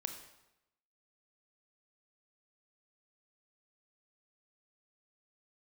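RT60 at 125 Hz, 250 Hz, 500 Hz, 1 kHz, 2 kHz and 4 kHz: 0.90, 0.90, 0.90, 0.90, 0.85, 0.75 seconds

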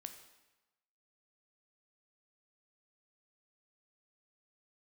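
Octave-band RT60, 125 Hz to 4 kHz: 1.0, 1.0, 1.0, 1.1, 1.0, 0.95 seconds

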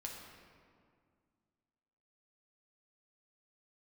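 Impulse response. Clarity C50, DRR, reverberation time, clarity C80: 2.0 dB, −1.5 dB, 2.1 s, 3.5 dB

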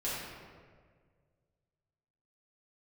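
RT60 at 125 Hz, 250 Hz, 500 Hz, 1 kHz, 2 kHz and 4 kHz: 2.5, 1.9, 2.0, 1.5, 1.4, 1.0 seconds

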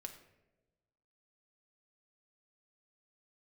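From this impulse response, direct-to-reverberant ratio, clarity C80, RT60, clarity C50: 4.5 dB, 12.0 dB, non-exponential decay, 9.5 dB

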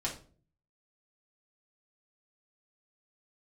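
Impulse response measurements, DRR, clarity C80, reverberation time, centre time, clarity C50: −4.5 dB, 14.5 dB, 0.45 s, 19 ms, 9.0 dB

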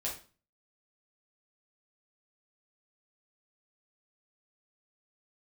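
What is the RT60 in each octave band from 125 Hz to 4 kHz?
0.50, 0.45, 0.40, 0.35, 0.35, 0.35 seconds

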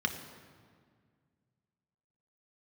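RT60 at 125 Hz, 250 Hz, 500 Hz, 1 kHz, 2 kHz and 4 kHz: 2.8, 2.5, 2.0, 1.8, 1.6, 1.3 seconds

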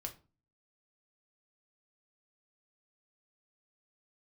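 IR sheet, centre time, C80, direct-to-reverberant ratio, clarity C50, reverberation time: 9 ms, 20.5 dB, 2.5 dB, 14.0 dB, 0.35 s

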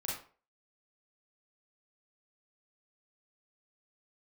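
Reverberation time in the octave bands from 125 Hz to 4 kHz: 0.40, 0.35, 0.45, 0.40, 0.35, 0.30 seconds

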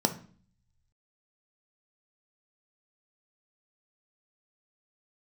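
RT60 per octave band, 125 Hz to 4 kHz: 1.3, 0.75, 0.45, 0.45, 0.40, 0.40 seconds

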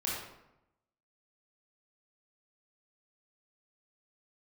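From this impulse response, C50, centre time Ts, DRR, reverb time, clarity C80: −0.5 dB, 67 ms, −6.0 dB, 0.90 s, 3.0 dB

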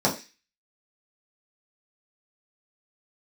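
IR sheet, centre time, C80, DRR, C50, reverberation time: 18 ms, 16.0 dB, −5.5 dB, 11.5 dB, 0.25 s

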